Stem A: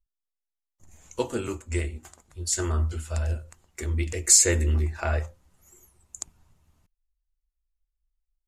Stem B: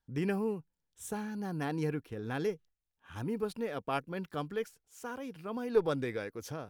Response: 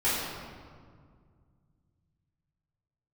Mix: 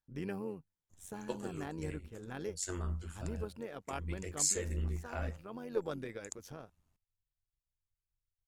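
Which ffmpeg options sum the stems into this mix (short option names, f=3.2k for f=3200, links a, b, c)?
-filter_complex "[0:a]adelay=100,volume=-9.5dB[a];[1:a]volume=-5dB,asplit=2[b][c];[c]apad=whole_len=377996[d];[a][d]sidechaincompress=threshold=-39dB:ratio=8:attack=16:release=231[e];[e][b]amix=inputs=2:normalize=0,tremolo=f=93:d=0.621"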